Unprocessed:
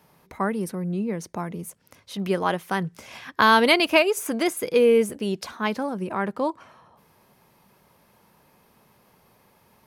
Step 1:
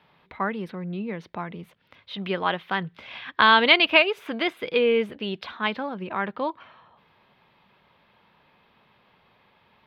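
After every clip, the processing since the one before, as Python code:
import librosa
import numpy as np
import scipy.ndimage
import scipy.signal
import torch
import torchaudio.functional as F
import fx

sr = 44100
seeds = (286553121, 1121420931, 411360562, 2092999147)

y = fx.curve_eq(x, sr, hz=(400.0, 3600.0, 6700.0, 9900.0, 14000.0), db=(0, 10, -21, -25, -17))
y = y * librosa.db_to_amplitude(-4.5)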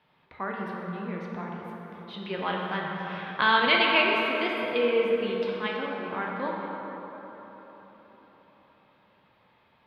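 y = fx.rev_plate(x, sr, seeds[0], rt60_s=4.4, hf_ratio=0.45, predelay_ms=0, drr_db=-2.5)
y = y * librosa.db_to_amplitude(-7.5)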